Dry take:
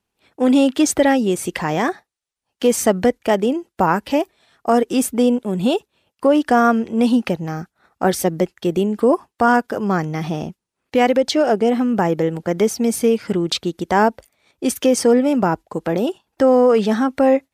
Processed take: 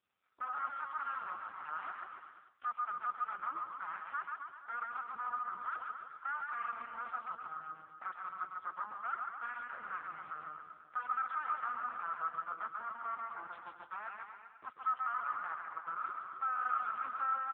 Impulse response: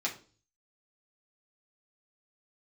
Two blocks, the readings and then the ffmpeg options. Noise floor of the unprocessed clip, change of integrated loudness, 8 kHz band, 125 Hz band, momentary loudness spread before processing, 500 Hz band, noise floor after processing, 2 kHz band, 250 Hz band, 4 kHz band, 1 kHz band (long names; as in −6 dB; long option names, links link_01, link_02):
−81 dBFS, −21.5 dB, below −40 dB, below −40 dB, 9 LU, below −40 dB, −60 dBFS, −15.0 dB, below −40 dB, below −35 dB, −14.5 dB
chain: -filter_complex "[0:a]deesser=0.3,alimiter=limit=-9.5dB:level=0:latency=1:release=57,aeval=exprs='0.106*(abs(mod(val(0)/0.106+3,4)-2)-1)':channel_layout=same,bandpass=frequency=1300:width_type=q:width=9.1:csg=0,aecho=1:1:140|266|379.4|481.5|573.3:0.631|0.398|0.251|0.158|0.1,asplit=2[link_01][link_02];[1:a]atrim=start_sample=2205,asetrate=66150,aresample=44100,adelay=127[link_03];[link_02][link_03]afir=irnorm=-1:irlink=0,volume=-11dB[link_04];[link_01][link_04]amix=inputs=2:normalize=0,volume=-1.5dB" -ar 8000 -c:a libopencore_amrnb -b:a 5150